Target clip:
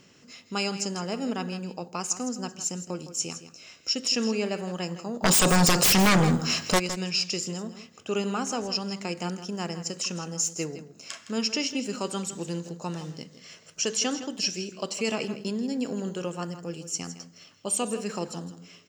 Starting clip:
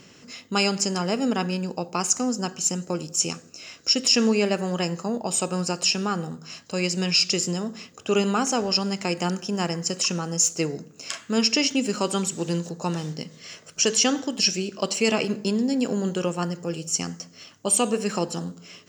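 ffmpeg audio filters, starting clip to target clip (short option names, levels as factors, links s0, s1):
-filter_complex "[0:a]asplit=3[s0][s1][s2];[s0]afade=t=out:st=5.22:d=0.02[s3];[s1]aeval=exprs='0.335*sin(PI/2*6.31*val(0)/0.335)':c=same,afade=t=in:st=5.22:d=0.02,afade=t=out:st=6.78:d=0.02[s4];[s2]afade=t=in:st=6.78:d=0.02[s5];[s3][s4][s5]amix=inputs=3:normalize=0,asplit=2[s6][s7];[s7]aecho=0:1:162:0.224[s8];[s6][s8]amix=inputs=2:normalize=0,volume=0.473"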